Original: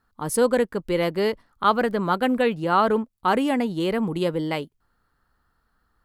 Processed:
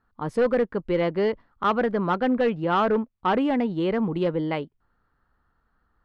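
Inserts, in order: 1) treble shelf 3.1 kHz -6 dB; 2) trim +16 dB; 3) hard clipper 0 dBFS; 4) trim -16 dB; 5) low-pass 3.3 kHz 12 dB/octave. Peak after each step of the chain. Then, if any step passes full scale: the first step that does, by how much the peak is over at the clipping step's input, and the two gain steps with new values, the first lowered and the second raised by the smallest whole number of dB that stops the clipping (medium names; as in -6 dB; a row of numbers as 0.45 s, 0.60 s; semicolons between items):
-6.5 dBFS, +9.5 dBFS, 0.0 dBFS, -16.0 dBFS, -15.5 dBFS; step 2, 9.5 dB; step 2 +6 dB, step 4 -6 dB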